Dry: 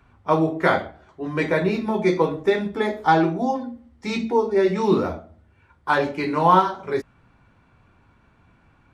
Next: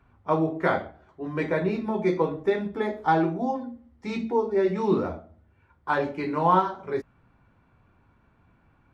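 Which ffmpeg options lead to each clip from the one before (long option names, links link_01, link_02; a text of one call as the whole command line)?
ffmpeg -i in.wav -af "highshelf=frequency=2900:gain=-9,volume=-4dB" out.wav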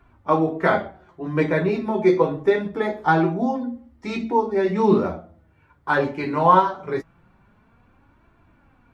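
ffmpeg -i in.wav -af "flanger=delay=2.8:depth=5.4:regen=44:speed=0.24:shape=triangular,volume=9dB" out.wav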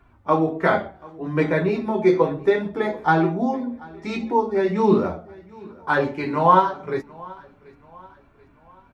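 ffmpeg -i in.wav -af "aecho=1:1:734|1468|2202:0.0708|0.0326|0.015" out.wav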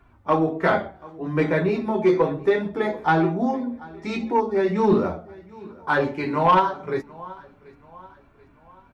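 ffmpeg -i in.wav -af "asoftclip=type=tanh:threshold=-8.5dB" out.wav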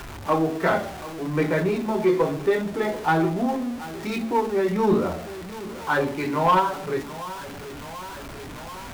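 ffmpeg -i in.wav -af "aeval=exprs='val(0)+0.5*0.0335*sgn(val(0))':channel_layout=same,volume=-2.5dB" out.wav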